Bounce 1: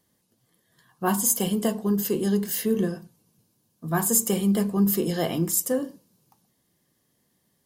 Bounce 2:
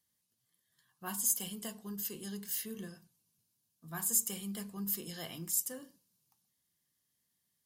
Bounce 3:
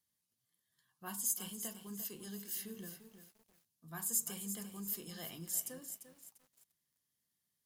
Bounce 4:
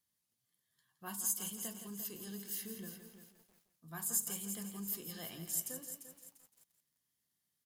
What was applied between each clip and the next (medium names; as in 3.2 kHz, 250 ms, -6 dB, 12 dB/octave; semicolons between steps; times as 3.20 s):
amplifier tone stack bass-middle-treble 5-5-5; trim -2 dB
bit-crushed delay 346 ms, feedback 35%, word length 9-bit, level -9.5 dB; trim -4.5 dB
delay 167 ms -10 dB